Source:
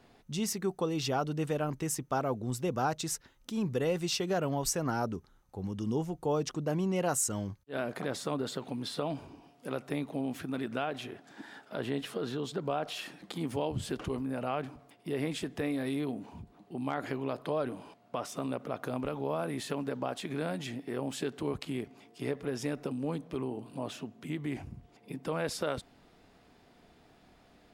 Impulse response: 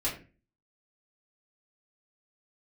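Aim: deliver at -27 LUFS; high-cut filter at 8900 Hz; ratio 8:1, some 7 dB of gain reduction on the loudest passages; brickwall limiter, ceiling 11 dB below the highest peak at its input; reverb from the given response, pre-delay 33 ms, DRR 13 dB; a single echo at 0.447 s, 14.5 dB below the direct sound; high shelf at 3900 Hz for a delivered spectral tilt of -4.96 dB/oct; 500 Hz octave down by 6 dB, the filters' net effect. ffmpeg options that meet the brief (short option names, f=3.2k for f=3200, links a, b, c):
-filter_complex "[0:a]lowpass=8.9k,equalizer=f=500:t=o:g=-7.5,highshelf=f=3.9k:g=-4,acompressor=threshold=-36dB:ratio=8,alimiter=level_in=10dB:limit=-24dB:level=0:latency=1,volume=-10dB,aecho=1:1:447:0.188,asplit=2[a][b];[1:a]atrim=start_sample=2205,adelay=33[c];[b][c]afir=irnorm=-1:irlink=0,volume=-19dB[d];[a][d]amix=inputs=2:normalize=0,volume=17.5dB"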